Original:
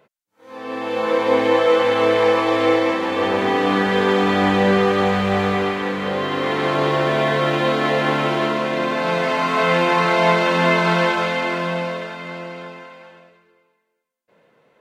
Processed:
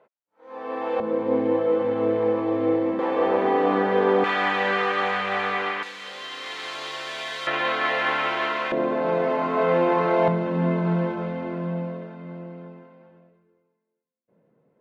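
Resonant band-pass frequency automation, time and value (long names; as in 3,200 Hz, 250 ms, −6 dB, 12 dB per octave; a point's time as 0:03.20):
resonant band-pass, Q 0.84
710 Hz
from 0:01.00 200 Hz
from 0:02.99 570 Hz
from 0:04.24 1,700 Hz
from 0:05.83 6,100 Hz
from 0:07.47 1,800 Hz
from 0:08.72 420 Hz
from 0:10.28 170 Hz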